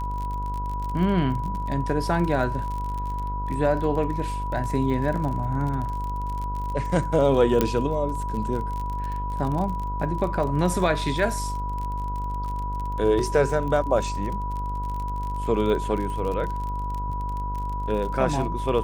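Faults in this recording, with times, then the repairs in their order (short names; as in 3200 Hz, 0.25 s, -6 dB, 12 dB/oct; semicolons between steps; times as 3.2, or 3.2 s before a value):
buzz 50 Hz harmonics 30 -30 dBFS
crackle 39/s -30 dBFS
tone 980 Hz -30 dBFS
7.61 pop -6 dBFS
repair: de-click; de-hum 50 Hz, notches 30; notch 980 Hz, Q 30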